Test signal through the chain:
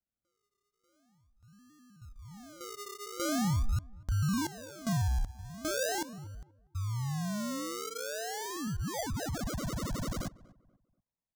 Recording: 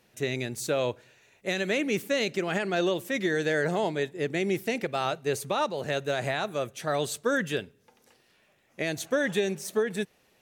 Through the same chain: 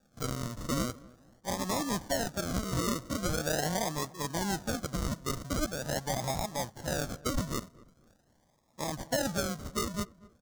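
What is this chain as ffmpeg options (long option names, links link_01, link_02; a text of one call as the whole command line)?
ffmpeg -i in.wav -filter_complex "[0:a]acrusher=samples=42:mix=1:aa=0.000001:lfo=1:lforange=25.2:lforate=0.43,equalizer=frequency=400:width_type=o:width=0.67:gain=-11,equalizer=frequency=2500:width_type=o:width=0.67:gain=-10,equalizer=frequency=6300:width_type=o:width=0.67:gain=6,asplit=2[link_01][link_02];[link_02]adelay=241,lowpass=frequency=1300:poles=1,volume=-20.5dB,asplit=2[link_03][link_04];[link_04]adelay=241,lowpass=frequency=1300:poles=1,volume=0.33,asplit=2[link_05][link_06];[link_06]adelay=241,lowpass=frequency=1300:poles=1,volume=0.33[link_07];[link_01][link_03][link_05][link_07]amix=inputs=4:normalize=0,volume=-1.5dB" out.wav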